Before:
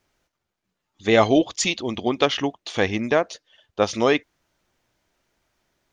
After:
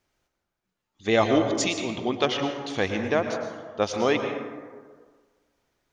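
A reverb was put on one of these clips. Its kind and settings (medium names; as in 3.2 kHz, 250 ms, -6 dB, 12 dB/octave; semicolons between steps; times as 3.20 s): plate-style reverb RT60 1.6 s, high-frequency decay 0.4×, pre-delay 95 ms, DRR 5 dB; trim -4.5 dB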